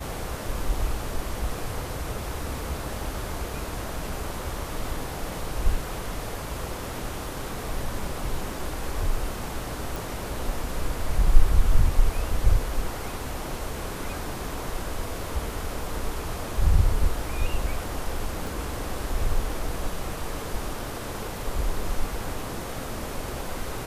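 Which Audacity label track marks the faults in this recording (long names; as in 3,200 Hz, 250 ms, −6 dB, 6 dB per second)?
9.960000	9.960000	click
18.470000	18.470000	click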